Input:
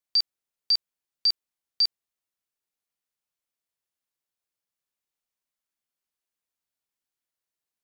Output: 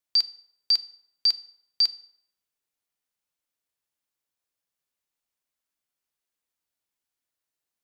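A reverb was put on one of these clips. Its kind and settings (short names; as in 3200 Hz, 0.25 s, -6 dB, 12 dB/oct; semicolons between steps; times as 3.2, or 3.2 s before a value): FDN reverb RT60 0.74 s, low-frequency decay 0.75×, high-frequency decay 0.7×, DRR 13.5 dB; gain +1.5 dB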